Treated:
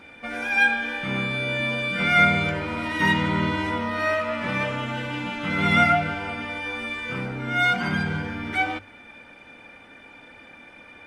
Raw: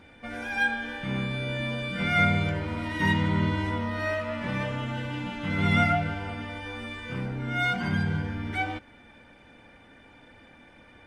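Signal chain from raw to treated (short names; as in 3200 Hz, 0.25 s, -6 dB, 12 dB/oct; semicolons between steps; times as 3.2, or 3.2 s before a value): low shelf 170 Hz -9.5 dB; notches 50/100 Hz; small resonant body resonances 1300/2400 Hz, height 9 dB, ringing for 40 ms; gain +5.5 dB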